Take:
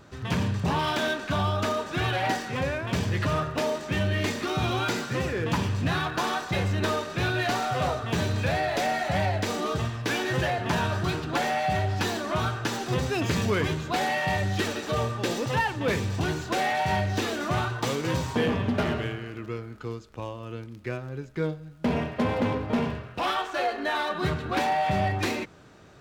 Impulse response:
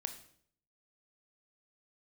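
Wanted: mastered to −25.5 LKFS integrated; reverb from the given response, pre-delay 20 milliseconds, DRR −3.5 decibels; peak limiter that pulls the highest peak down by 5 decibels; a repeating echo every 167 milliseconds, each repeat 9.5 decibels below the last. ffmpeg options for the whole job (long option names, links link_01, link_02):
-filter_complex "[0:a]alimiter=limit=-19dB:level=0:latency=1,aecho=1:1:167|334|501|668:0.335|0.111|0.0365|0.012,asplit=2[link_01][link_02];[1:a]atrim=start_sample=2205,adelay=20[link_03];[link_02][link_03]afir=irnorm=-1:irlink=0,volume=5dB[link_04];[link_01][link_04]amix=inputs=2:normalize=0,volume=-2.5dB"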